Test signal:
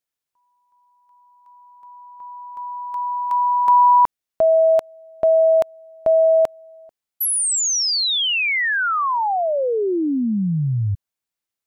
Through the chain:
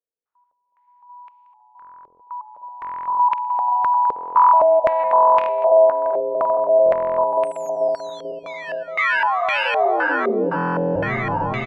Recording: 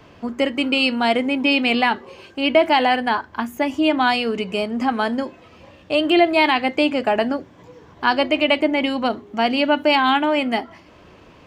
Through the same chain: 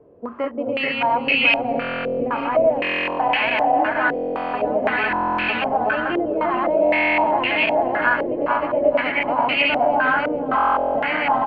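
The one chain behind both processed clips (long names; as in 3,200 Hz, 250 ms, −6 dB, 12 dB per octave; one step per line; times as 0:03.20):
feedback delay that plays each chunk backwards 219 ms, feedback 84%, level 0 dB
low-shelf EQ 440 Hz −10.5 dB
gain into a clipping stage and back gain 6.5 dB
downward compressor, threshold −20 dBFS
echo with shifted repeats 435 ms, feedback 44%, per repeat −120 Hz, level −11.5 dB
harmonic and percussive parts rebalanced percussive −4 dB
single-tap delay 624 ms −13 dB
buffer that repeats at 0:01.80/0:02.80/0:04.14/0:05.09/0:06.84/0:10.56, samples 1,024, times 16
low-pass on a step sequencer 3.9 Hz 460–2,500 Hz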